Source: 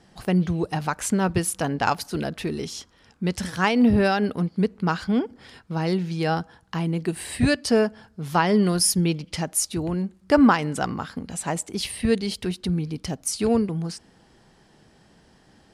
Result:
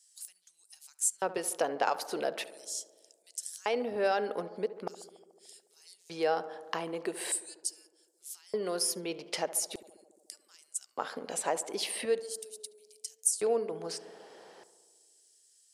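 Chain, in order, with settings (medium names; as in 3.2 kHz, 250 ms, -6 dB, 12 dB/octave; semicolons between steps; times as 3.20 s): compression 3:1, threshold -35 dBFS, peak gain reduction 17 dB; LFO high-pass square 0.41 Hz 500–7900 Hz; tape echo 71 ms, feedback 84%, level -14 dB, low-pass 1.6 kHz; trim +2.5 dB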